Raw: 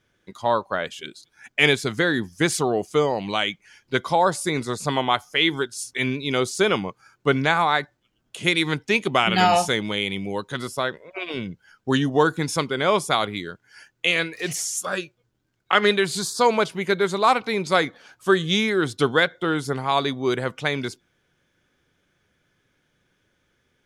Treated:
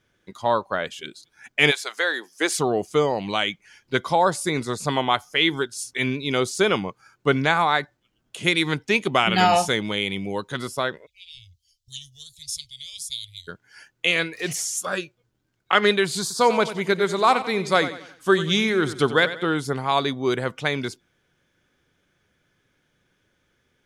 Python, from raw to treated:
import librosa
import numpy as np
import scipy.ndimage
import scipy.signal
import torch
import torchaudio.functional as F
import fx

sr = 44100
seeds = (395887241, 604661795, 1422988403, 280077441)

y = fx.highpass(x, sr, hz=fx.line((1.7, 700.0), (2.58, 300.0)), slope=24, at=(1.7, 2.58), fade=0.02)
y = fx.cheby2_bandstop(y, sr, low_hz=190.0, high_hz=1600.0, order=4, stop_db=50, at=(11.05, 13.47), fade=0.02)
y = fx.echo_feedback(y, sr, ms=92, feedback_pct=39, wet_db=-13, at=(16.21, 19.45))